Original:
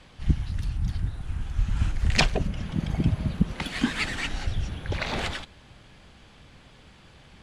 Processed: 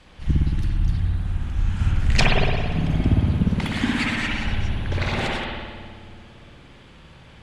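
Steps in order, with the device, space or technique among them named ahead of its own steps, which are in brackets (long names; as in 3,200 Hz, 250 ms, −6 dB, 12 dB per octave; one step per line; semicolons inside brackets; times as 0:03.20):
dub delay into a spring reverb (feedback echo with a low-pass in the loop 289 ms, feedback 61%, low-pass 870 Hz, level −13 dB; spring reverb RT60 1.6 s, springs 56 ms, chirp 65 ms, DRR −3.5 dB)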